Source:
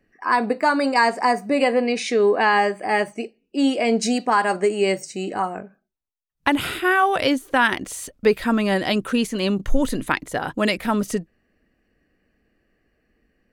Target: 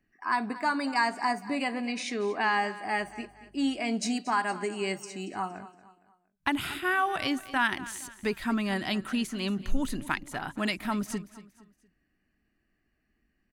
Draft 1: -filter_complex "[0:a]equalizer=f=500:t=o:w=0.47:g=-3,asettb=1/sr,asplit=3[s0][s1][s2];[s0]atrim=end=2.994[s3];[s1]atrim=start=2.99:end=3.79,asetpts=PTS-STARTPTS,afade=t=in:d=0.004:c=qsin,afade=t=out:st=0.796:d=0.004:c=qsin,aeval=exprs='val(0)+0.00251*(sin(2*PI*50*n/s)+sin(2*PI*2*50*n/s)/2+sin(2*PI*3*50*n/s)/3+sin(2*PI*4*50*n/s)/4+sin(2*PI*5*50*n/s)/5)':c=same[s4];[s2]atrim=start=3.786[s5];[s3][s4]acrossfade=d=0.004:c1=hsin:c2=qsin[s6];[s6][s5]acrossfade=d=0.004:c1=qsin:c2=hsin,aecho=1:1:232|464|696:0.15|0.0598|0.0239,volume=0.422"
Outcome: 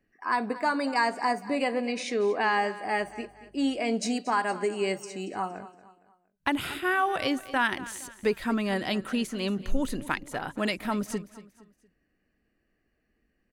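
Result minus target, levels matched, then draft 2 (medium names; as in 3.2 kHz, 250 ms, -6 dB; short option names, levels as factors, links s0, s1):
500 Hz band +4.0 dB
-filter_complex "[0:a]equalizer=f=500:t=o:w=0.47:g=-14.5,asettb=1/sr,asplit=3[s0][s1][s2];[s0]atrim=end=2.994[s3];[s1]atrim=start=2.99:end=3.79,asetpts=PTS-STARTPTS,afade=t=in:d=0.004:c=qsin,afade=t=out:st=0.796:d=0.004:c=qsin,aeval=exprs='val(0)+0.00251*(sin(2*PI*50*n/s)+sin(2*PI*2*50*n/s)/2+sin(2*PI*3*50*n/s)/3+sin(2*PI*4*50*n/s)/4+sin(2*PI*5*50*n/s)/5)':c=same[s4];[s2]atrim=start=3.786[s5];[s3][s4]acrossfade=d=0.004:c1=hsin:c2=qsin[s6];[s6][s5]acrossfade=d=0.004:c1=qsin:c2=hsin,aecho=1:1:232|464|696:0.15|0.0598|0.0239,volume=0.422"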